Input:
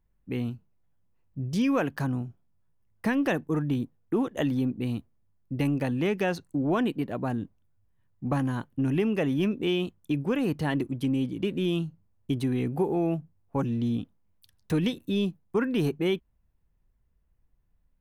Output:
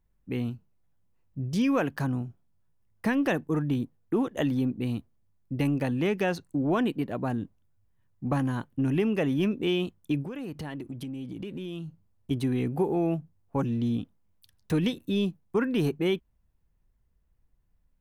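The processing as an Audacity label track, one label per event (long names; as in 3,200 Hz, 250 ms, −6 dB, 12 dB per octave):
10.240000	12.310000	downward compressor 8 to 1, threshold −33 dBFS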